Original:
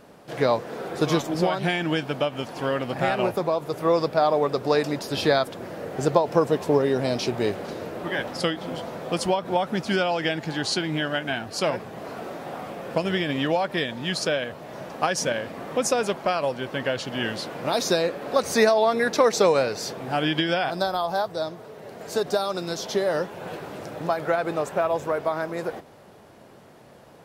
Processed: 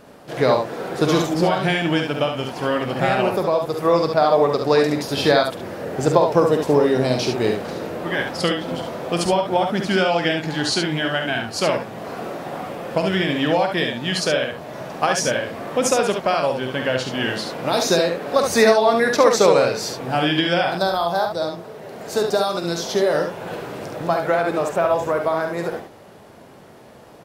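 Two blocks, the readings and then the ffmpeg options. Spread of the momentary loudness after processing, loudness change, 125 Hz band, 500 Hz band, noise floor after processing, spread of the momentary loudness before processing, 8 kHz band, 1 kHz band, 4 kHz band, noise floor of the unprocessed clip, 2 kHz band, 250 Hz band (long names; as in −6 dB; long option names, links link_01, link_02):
12 LU, +5.0 dB, +5.0 dB, +5.0 dB, −44 dBFS, 12 LU, +5.0 dB, +5.0 dB, +5.0 dB, −49 dBFS, +5.0 dB, +5.0 dB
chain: -af "aecho=1:1:47|70:0.335|0.531,volume=3.5dB"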